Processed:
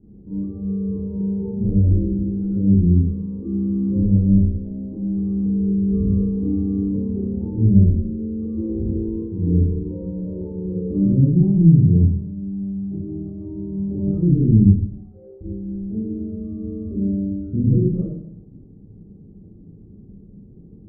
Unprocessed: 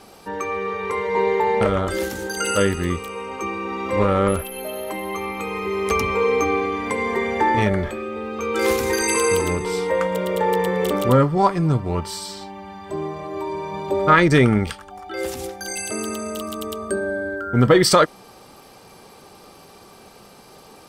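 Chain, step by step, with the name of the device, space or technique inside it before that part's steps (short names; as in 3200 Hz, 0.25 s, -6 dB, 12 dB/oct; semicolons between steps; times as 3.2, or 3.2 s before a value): 14.96–15.41 steep high-pass 400 Hz 96 dB/oct; club heard from the street (limiter -13.5 dBFS, peak gain reduction 10.5 dB; LPF 240 Hz 24 dB/oct; reverb RT60 0.70 s, pre-delay 22 ms, DRR -7.5 dB); gain +3 dB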